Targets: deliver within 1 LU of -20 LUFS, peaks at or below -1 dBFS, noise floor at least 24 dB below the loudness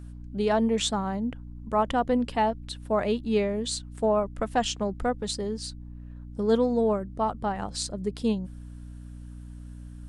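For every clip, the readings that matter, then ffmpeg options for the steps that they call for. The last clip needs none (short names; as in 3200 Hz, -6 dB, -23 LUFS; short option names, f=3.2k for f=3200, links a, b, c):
hum 60 Hz; harmonics up to 300 Hz; hum level -39 dBFS; loudness -27.5 LUFS; peak -12.5 dBFS; loudness target -20.0 LUFS
-> -af "bandreject=f=60:t=h:w=6,bandreject=f=120:t=h:w=6,bandreject=f=180:t=h:w=6,bandreject=f=240:t=h:w=6,bandreject=f=300:t=h:w=6"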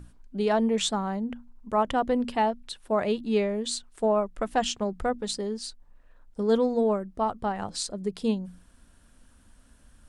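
hum none; loudness -28.0 LUFS; peak -12.5 dBFS; loudness target -20.0 LUFS
-> -af "volume=8dB"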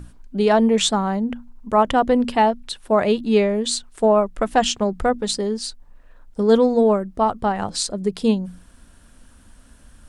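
loudness -20.0 LUFS; peak -4.5 dBFS; noise floor -50 dBFS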